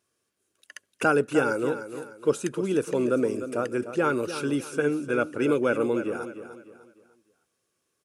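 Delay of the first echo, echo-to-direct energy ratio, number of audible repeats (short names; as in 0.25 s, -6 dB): 0.301 s, -10.5 dB, 3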